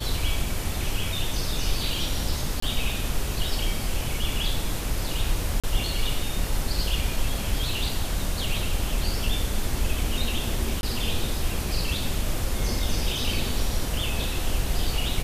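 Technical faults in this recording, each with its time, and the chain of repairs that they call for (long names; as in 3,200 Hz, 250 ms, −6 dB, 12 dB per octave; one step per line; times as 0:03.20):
0:02.60–0:02.62: drop-out 24 ms
0:05.60–0:05.64: drop-out 36 ms
0:10.81–0:10.83: drop-out 21 ms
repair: repair the gap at 0:02.60, 24 ms
repair the gap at 0:05.60, 36 ms
repair the gap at 0:10.81, 21 ms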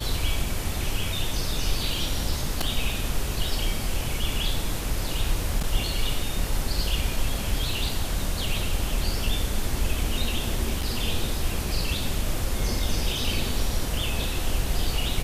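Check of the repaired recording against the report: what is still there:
none of them is left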